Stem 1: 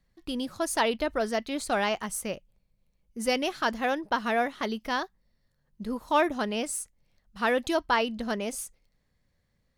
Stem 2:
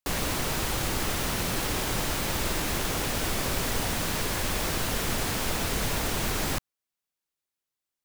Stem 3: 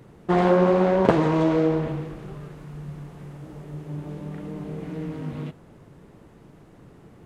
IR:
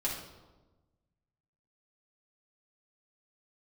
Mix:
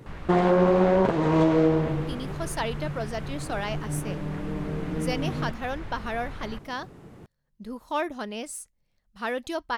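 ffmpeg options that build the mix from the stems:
-filter_complex "[0:a]adelay=1800,volume=-4.5dB[link_01];[1:a]lowpass=1400,equalizer=frequency=390:width=0.54:gain=-13,volume=-4.5dB[link_02];[2:a]volume=2dB[link_03];[link_01][link_02][link_03]amix=inputs=3:normalize=0,alimiter=limit=-10.5dB:level=0:latency=1:release=344"

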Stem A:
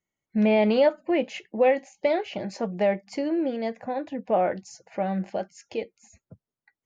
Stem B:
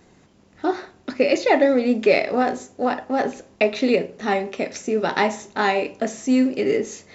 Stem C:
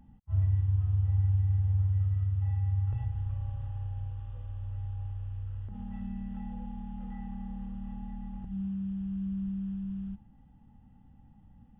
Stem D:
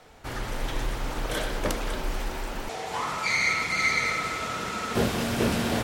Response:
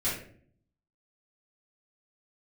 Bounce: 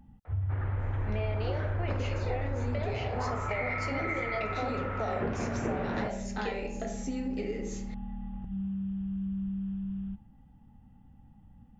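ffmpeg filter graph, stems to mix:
-filter_complex "[0:a]highpass=530,acompressor=threshold=-28dB:ratio=6,adelay=700,volume=-1dB,asplit=2[link_01][link_02];[link_02]volume=-11dB[link_03];[1:a]acompressor=threshold=-23dB:ratio=3,adelay=800,volume=-12dB,asplit=2[link_04][link_05];[link_05]volume=-7.5dB[link_06];[2:a]volume=1dB[link_07];[3:a]lowpass=frequency=2000:width=0.5412,lowpass=frequency=2000:width=1.3066,adelay=250,volume=-1dB[link_08];[4:a]atrim=start_sample=2205[link_09];[link_03][link_06]amix=inputs=2:normalize=0[link_10];[link_10][link_09]afir=irnorm=-1:irlink=0[link_11];[link_01][link_04][link_07][link_08][link_11]amix=inputs=5:normalize=0,acompressor=threshold=-30dB:ratio=3"

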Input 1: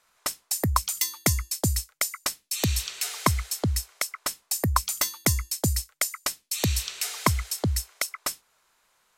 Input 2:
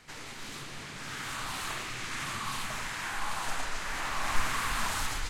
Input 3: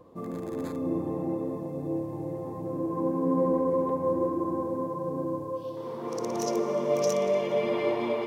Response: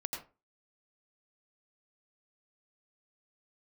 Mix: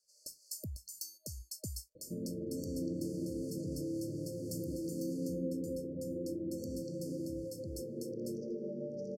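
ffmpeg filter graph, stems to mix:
-filter_complex "[0:a]equalizer=frequency=1500:width_type=o:width=2:gain=9,volume=-15dB[link_01];[1:a]highpass=frequency=780:width=0.5412,highpass=frequency=780:width=1.3066,alimiter=level_in=3dB:limit=-24dB:level=0:latency=1:release=218,volume=-3dB,asoftclip=type=hard:threshold=-30.5dB,volume=-14.5dB,asplit=3[link_02][link_03][link_04];[link_02]atrim=end=0.6,asetpts=PTS-STARTPTS,afade=type=out:start_time=0.596:duration=0.004:curve=hsin[link_05];[link_03]atrim=start=0.6:end=3.04,asetpts=PTS-STARTPTS,volume=0[link_06];[link_04]atrim=start=3.04,asetpts=PTS-STARTPTS,afade=type=in:duration=0.004:curve=hsin[link_07];[link_05][link_06][link_07]concat=n=3:v=0:a=1[link_08];[2:a]lowpass=1700,adelay=1950,volume=0dB,asplit=2[link_09][link_10];[link_10]volume=-11dB[link_11];[link_01][link_09]amix=inputs=2:normalize=0,agate=range=-8dB:threshold=-50dB:ratio=16:detection=peak,acompressor=threshold=-36dB:ratio=10,volume=0dB[link_12];[3:a]atrim=start_sample=2205[link_13];[link_11][link_13]afir=irnorm=-1:irlink=0[link_14];[link_08][link_12][link_14]amix=inputs=3:normalize=0,acrossover=split=320|3000[link_15][link_16][link_17];[link_16]acompressor=threshold=-45dB:ratio=6[link_18];[link_15][link_18][link_17]amix=inputs=3:normalize=0,afftfilt=real='re*(1-between(b*sr/4096,630,4300))':imag='im*(1-between(b*sr/4096,630,4300))':win_size=4096:overlap=0.75"

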